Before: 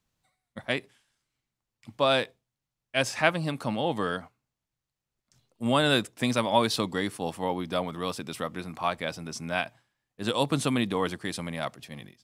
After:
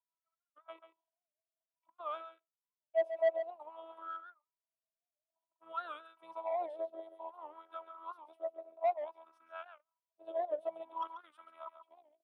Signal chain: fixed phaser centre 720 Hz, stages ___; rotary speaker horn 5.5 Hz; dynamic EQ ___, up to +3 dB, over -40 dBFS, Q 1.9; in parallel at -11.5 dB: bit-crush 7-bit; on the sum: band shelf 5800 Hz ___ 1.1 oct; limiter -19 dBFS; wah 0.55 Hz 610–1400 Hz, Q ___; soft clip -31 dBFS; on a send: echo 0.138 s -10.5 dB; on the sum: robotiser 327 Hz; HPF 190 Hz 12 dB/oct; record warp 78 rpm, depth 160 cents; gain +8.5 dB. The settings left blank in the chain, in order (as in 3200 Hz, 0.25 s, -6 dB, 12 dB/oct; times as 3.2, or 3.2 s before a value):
4, 540 Hz, -16 dB, 14